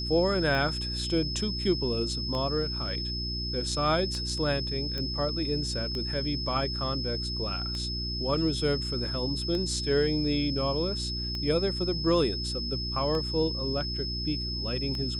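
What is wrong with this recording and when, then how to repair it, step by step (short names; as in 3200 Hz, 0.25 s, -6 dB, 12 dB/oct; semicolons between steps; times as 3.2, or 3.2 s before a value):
hum 60 Hz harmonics 6 -35 dBFS
tick 33 1/3 rpm -21 dBFS
tone 5200 Hz -33 dBFS
4.98 pop -20 dBFS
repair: de-click; de-hum 60 Hz, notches 6; notch 5200 Hz, Q 30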